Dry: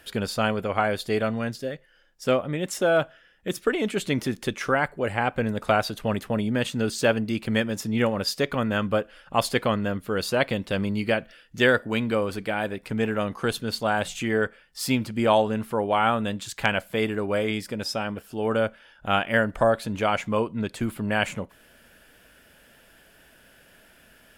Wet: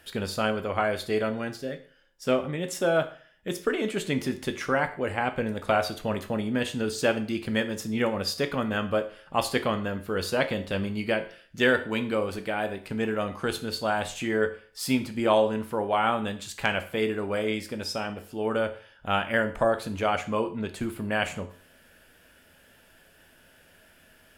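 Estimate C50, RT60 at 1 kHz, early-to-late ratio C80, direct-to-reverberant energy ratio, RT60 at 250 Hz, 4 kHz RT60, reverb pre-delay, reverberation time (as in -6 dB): 13.5 dB, 0.45 s, 17.0 dB, 7.5 dB, 0.45 s, 0.45 s, 11 ms, 0.45 s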